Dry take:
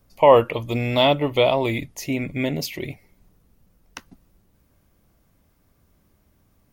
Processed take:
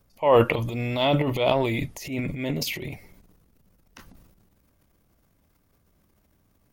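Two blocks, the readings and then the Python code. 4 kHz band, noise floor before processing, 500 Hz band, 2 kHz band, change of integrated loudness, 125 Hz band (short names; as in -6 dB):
-4.5 dB, -63 dBFS, -4.5 dB, -2.5 dB, -3.5 dB, 0.0 dB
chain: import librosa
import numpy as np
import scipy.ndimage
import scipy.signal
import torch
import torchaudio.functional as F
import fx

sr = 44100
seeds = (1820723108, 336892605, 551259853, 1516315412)

y = fx.transient(x, sr, attack_db=-8, sustain_db=11)
y = F.gain(torch.from_numpy(y), -4.0).numpy()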